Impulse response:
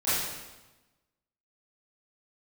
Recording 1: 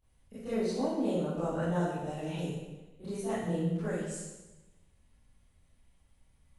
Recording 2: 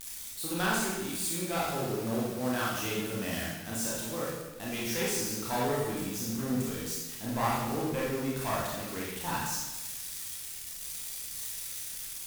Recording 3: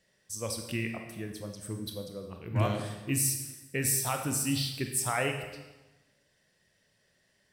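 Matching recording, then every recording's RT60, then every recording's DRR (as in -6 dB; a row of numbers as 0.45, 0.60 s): 1; 1.1, 1.1, 1.1 s; -15.5, -6.0, 4.0 dB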